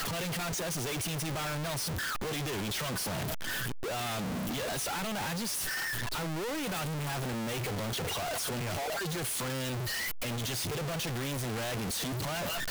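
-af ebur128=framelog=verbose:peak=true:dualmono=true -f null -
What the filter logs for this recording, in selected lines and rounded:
Integrated loudness:
  I:         -30.3 LUFS
  Threshold: -40.3 LUFS
Loudness range:
  LRA:         0.5 LU
  Threshold: -50.3 LUFS
  LRA low:   -30.5 LUFS
  LRA high:  -30.1 LUFS
True peak:
  Peak:      -27.9 dBFS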